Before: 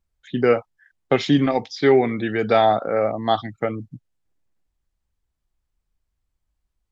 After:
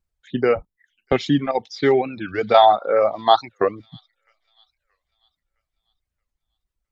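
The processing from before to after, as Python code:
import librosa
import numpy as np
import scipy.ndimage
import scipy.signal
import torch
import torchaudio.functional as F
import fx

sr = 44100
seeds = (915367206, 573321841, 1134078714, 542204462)

p1 = fx.octave_divider(x, sr, octaves=2, level_db=-1.0, at=(0.55, 1.13))
p2 = fx.dereverb_blind(p1, sr, rt60_s=1.1)
p3 = fx.graphic_eq(p2, sr, hz=(125, 250, 500, 1000, 2000, 4000), db=(-8, -4, 4, 11, -3, 11), at=(2.54, 3.87))
p4 = fx.level_steps(p3, sr, step_db=22)
p5 = p3 + (p4 * librosa.db_to_amplitude(-1.0))
p6 = fx.vibrato(p5, sr, rate_hz=1.5, depth_cents=6.0)
p7 = p6 + fx.echo_wet_highpass(p6, sr, ms=644, feedback_pct=39, hz=4100.0, wet_db=-18.0, dry=0)
p8 = fx.record_warp(p7, sr, rpm=45.0, depth_cents=250.0)
y = p8 * librosa.db_to_amplitude(-3.5)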